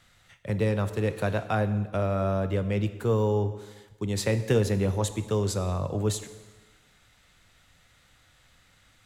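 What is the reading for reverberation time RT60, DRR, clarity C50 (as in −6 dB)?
1.3 s, 10.5 dB, 12.5 dB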